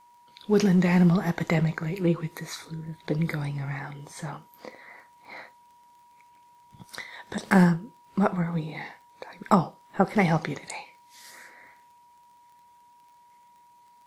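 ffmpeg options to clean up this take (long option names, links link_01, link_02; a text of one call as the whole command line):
ffmpeg -i in.wav -af "adeclick=threshold=4,bandreject=frequency=960:width=30" out.wav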